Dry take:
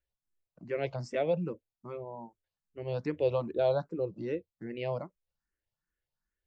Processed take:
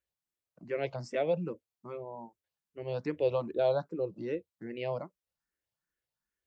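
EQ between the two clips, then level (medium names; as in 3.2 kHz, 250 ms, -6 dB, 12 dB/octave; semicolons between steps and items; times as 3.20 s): high-pass 140 Hz 6 dB/octave; 0.0 dB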